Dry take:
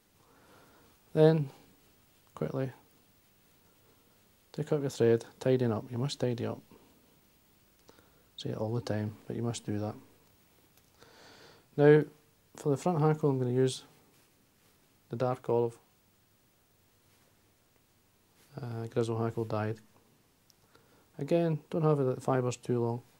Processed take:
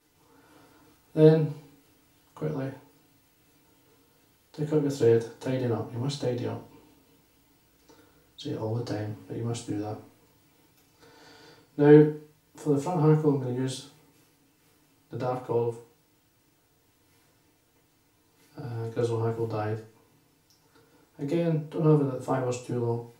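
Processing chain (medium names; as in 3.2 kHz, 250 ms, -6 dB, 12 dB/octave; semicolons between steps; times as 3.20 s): FDN reverb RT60 0.4 s, low-frequency decay 0.95×, high-frequency decay 0.9×, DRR -6 dB; trim -5 dB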